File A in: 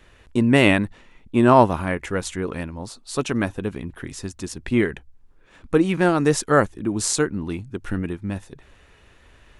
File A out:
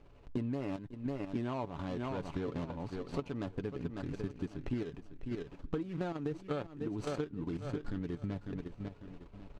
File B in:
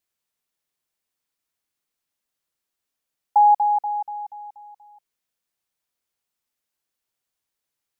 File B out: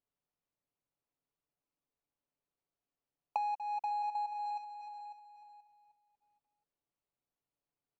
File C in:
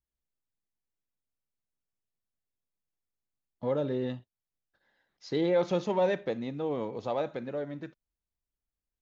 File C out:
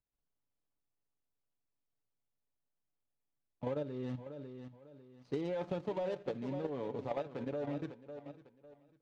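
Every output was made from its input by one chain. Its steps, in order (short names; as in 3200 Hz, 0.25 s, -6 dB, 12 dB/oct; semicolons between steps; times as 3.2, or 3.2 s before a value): median filter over 25 samples; LPF 6100 Hz 12 dB/oct; feedback echo 0.549 s, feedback 29%, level -13.5 dB; level quantiser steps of 10 dB; comb 7 ms, depth 36%; compressor 16:1, threshold -35 dBFS; gain +2 dB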